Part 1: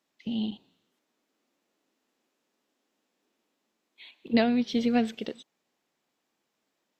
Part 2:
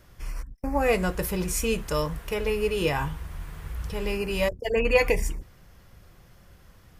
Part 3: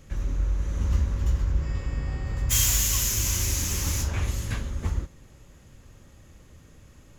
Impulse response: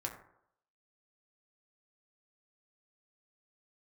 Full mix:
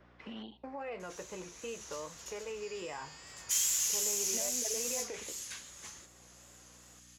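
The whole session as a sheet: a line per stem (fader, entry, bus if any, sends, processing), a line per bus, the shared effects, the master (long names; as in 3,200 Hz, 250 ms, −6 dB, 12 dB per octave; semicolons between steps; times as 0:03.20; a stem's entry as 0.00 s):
+2.0 dB, 0.00 s, bus A, no send, high-pass filter 490 Hz 12 dB per octave; automatic ducking −12 dB, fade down 1.00 s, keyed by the second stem
−6.5 dB, 0.00 s, bus A, no send, de-essing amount 75%; Bessel high-pass filter 540 Hz, order 2
−1.5 dB, 1.00 s, no bus, no send, resonant band-pass 7,200 Hz, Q 1
bus A: 0.0 dB, head-to-tape spacing loss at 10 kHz 43 dB; brickwall limiter −33.5 dBFS, peak gain reduction 12.5 dB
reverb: not used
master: pitch vibrato 2.5 Hz 53 cents; mains hum 60 Hz, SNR 32 dB; multiband upward and downward compressor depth 40%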